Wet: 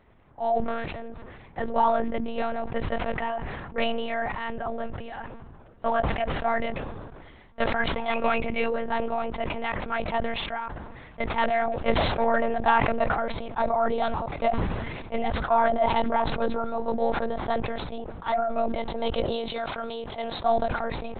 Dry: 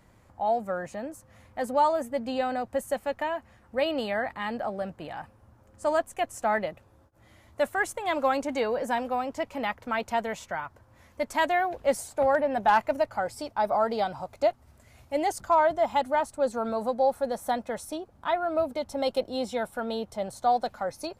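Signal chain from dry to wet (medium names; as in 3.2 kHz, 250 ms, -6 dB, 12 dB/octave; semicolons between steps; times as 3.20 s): 0.68–1.08 s: cycle switcher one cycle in 3, muted; 8.11–8.65 s: peaking EQ 2.5 kHz +14 dB 0.35 oct; monotone LPC vocoder at 8 kHz 230 Hz; 19.24–20.40 s: tilt EQ +2 dB/octave; decay stretcher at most 32 dB/s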